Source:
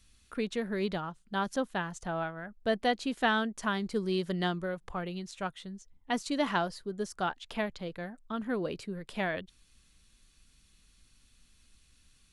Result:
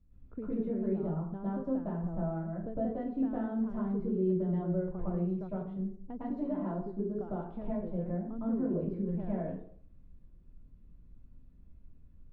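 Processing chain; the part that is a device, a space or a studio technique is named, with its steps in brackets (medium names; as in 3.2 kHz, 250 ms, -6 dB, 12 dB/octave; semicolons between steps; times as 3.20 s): television next door (compression 4:1, threshold -36 dBFS, peak gain reduction 11.5 dB; low-pass 410 Hz 12 dB/octave; reverberation RT60 0.60 s, pre-delay 103 ms, DRR -9.5 dB)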